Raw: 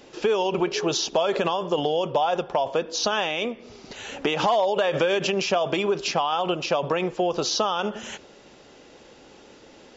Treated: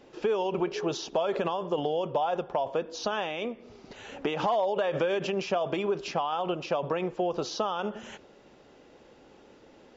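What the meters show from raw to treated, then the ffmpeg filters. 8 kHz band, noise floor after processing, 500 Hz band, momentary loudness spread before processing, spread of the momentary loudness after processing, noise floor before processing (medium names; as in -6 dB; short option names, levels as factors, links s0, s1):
no reading, -56 dBFS, -5.0 dB, 9 LU, 9 LU, -50 dBFS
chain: -af "highshelf=f=2800:g=-10,volume=0.596"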